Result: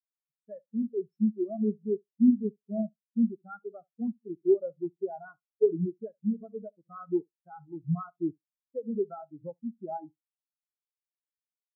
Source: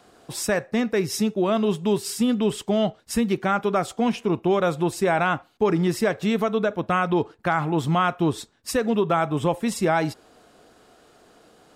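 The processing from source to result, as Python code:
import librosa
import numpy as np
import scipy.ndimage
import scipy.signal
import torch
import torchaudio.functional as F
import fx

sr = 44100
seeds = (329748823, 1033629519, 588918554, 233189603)

y = fx.room_flutter(x, sr, wall_m=11.9, rt60_s=0.46)
y = fx.spectral_expand(y, sr, expansion=4.0)
y = y * 10.0 ** (-3.0 / 20.0)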